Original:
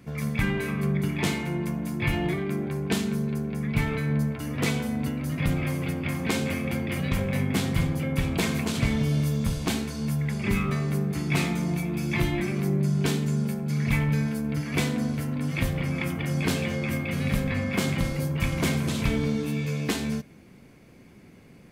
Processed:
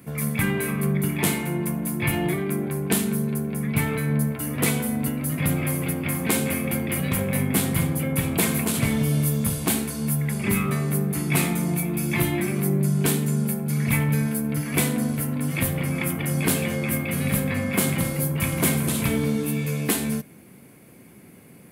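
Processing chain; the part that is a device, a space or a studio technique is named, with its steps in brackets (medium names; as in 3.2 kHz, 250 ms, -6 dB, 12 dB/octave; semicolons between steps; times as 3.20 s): budget condenser microphone (high-pass 100 Hz; resonant high shelf 7.9 kHz +11.5 dB, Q 1.5); trim +3 dB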